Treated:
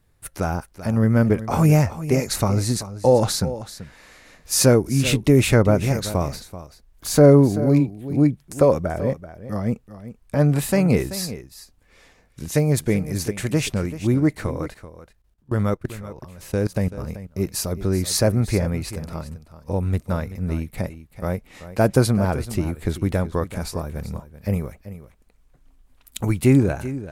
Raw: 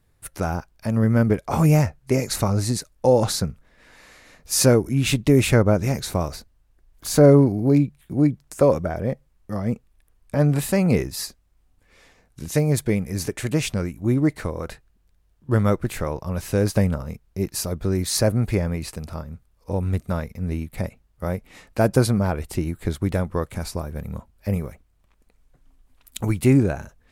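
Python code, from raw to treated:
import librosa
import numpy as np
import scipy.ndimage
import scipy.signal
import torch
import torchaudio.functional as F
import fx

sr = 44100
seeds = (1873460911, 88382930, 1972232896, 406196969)

y = fx.level_steps(x, sr, step_db=21, at=(14.68, 16.98))
y = y + 10.0 ** (-14.0 / 20.0) * np.pad(y, (int(384 * sr / 1000.0), 0))[:len(y)]
y = y * librosa.db_to_amplitude(1.0)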